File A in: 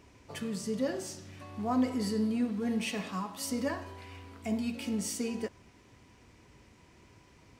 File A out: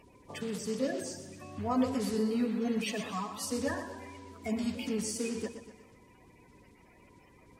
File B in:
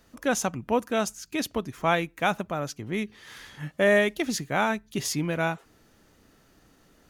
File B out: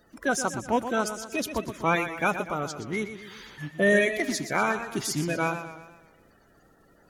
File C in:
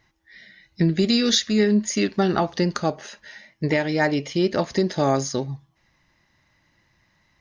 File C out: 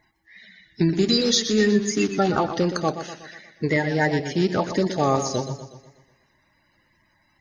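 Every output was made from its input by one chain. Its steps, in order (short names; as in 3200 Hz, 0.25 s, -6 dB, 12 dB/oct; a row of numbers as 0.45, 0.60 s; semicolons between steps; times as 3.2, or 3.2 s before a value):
bin magnitudes rounded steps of 30 dB; warbling echo 0.122 s, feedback 50%, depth 80 cents, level -10 dB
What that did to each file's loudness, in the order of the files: -0.5, 0.0, 0.0 LU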